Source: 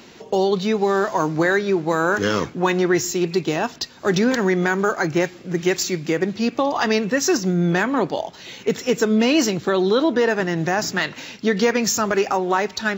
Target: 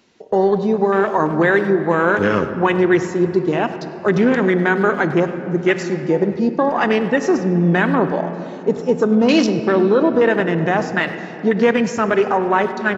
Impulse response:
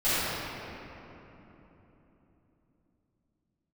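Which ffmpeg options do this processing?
-filter_complex "[0:a]afwtdn=0.0562,asplit=2[a][b];[1:a]atrim=start_sample=2205[c];[b][c]afir=irnorm=-1:irlink=0,volume=-25dB[d];[a][d]amix=inputs=2:normalize=0,aresample=22050,aresample=44100,asettb=1/sr,asplit=3[e][f][g];[e]atrim=end=5.684[h];[f]atrim=start=5.68:end=6.4,asetpts=PTS-STARTPTS,afade=t=in:d=0.004:c=qsin,afade=t=out:st=0.716:d=0.004:c=qsin,equalizer=f=1.4k:w=0.53:g=4.5[i];[g]atrim=start=6.396[j];[h][i]acrossfade=d=0.004:c1=hsin:c2=qsin[k];[k][j]acrossfade=d=0.004:c1=qsin:c2=hsin,asplit=2[l][m];[m]adelay=100,highpass=300,lowpass=3.4k,asoftclip=type=hard:threshold=-14.5dB,volume=-16dB[n];[l][n]amix=inputs=2:normalize=0,volume=3dB"

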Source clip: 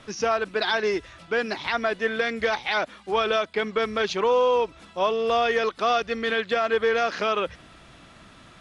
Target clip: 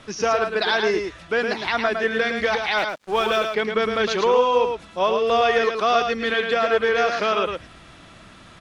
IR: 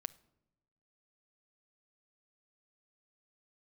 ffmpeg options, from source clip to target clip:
-filter_complex "[0:a]asettb=1/sr,asplit=3[a][b][c];[a]atrim=end=2.784[d];[b]atrim=start=2.78:end=3.44,asetpts=PTS-STARTPTS,afade=t=in:d=0.004:c=qsin,afade=t=out:st=0.656:d=0.004:c=qsin,aeval=exprs='sgn(val(0))*max(abs(val(0))-0.00841,0)':c=same[e];[c]atrim=start=3.436[f];[d][e]acrossfade=d=0.004:c1=hsin:c2=qsin[g];[g][f]acrossfade=d=0.004:c1=qsin:c2=hsin,aecho=1:1:109:0.531,volume=2.5dB"

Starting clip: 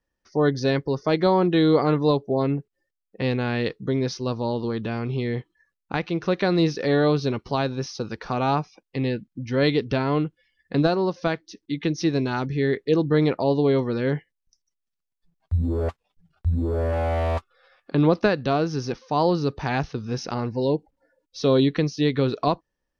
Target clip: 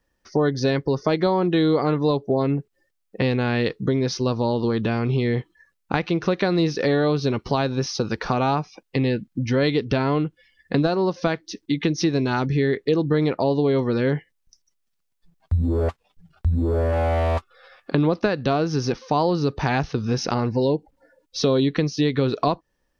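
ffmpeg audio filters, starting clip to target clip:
-af "acompressor=threshold=-28dB:ratio=3,volume=8.5dB"

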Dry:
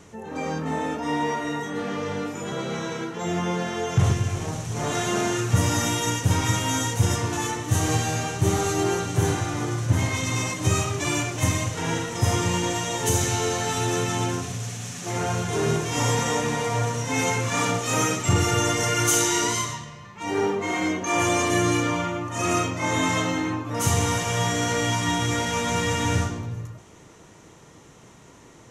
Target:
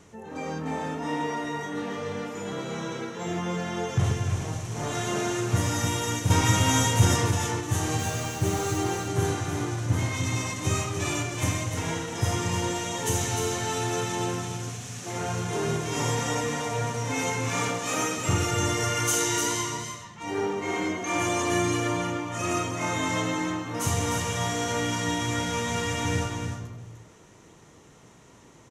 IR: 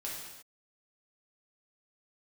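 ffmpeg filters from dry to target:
-filter_complex "[0:a]asettb=1/sr,asplit=3[a][b][c];[a]atrim=end=6.304[d];[b]atrim=start=6.3:end=7.31,asetpts=PTS-STARTPTS,afade=t=in:d=0.004:c=qsin,afade=t=out:st=1.006:d=0.004:c=qsin,acontrast=47[e];[c]atrim=start=7.306[f];[d][e]acrossfade=d=0.004:c1=hsin:c2=qsin[g];[g][f]acrossfade=d=0.004:c1=qsin:c2=hsin,asettb=1/sr,asplit=3[h][i][j];[h]atrim=end=7.994[k];[i]atrim=start=7.99:end=8.78,asetpts=PTS-STARTPTS,afade=t=in:d=0.004:c=qsin,afade=t=out:st=0.786:d=0.004:c=qsin,acrusher=bits=5:mix=0:aa=0.5[l];[j]atrim=start=8.776[m];[k][l]acrossfade=d=0.004:c1=hsin:c2=qsin[n];[n][m]acrossfade=d=0.004:c1=qsin:c2=hsin,asettb=1/sr,asplit=3[o][p][q];[o]atrim=end=17.684[r];[p]atrim=start=17.68:end=18.18,asetpts=PTS-STARTPTS,afade=t=in:d=0.004:c=qsin,afade=t=out:st=0.496:d=0.004:c=qsin,highpass=190[s];[q]atrim=start=18.176[t];[r][s]acrossfade=d=0.004:c1=hsin:c2=qsin[u];[u][t]acrossfade=d=0.004:c1=qsin:c2=hsin,aecho=1:1:301:0.473,volume=-4.5dB"

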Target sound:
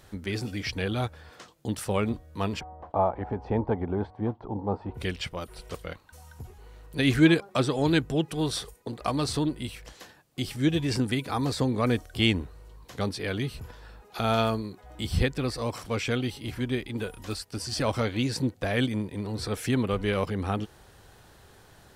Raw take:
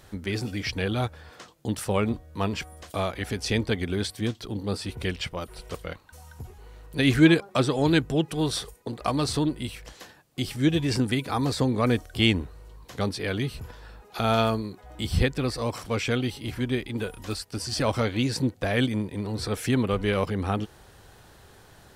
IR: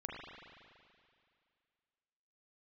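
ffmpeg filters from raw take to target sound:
-filter_complex "[0:a]asplit=3[a][b][c];[a]afade=t=out:st=2.59:d=0.02[d];[b]lowpass=f=870:t=q:w=4.9,afade=t=in:st=2.59:d=0.02,afade=t=out:st=4.94:d=0.02[e];[c]afade=t=in:st=4.94:d=0.02[f];[d][e][f]amix=inputs=3:normalize=0,volume=-2dB"

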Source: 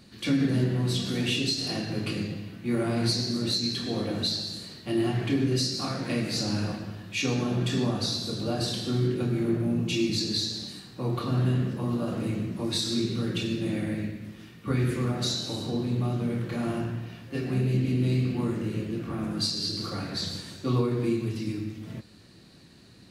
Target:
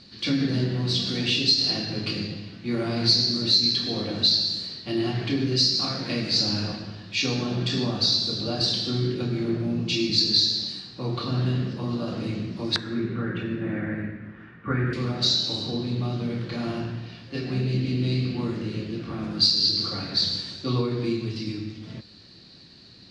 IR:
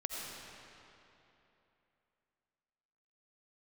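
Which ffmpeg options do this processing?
-af "asetnsamples=n=441:p=0,asendcmd='12.76 lowpass f 1600;14.93 lowpass f 4600',lowpass=f=4.7k:t=q:w=3.4"

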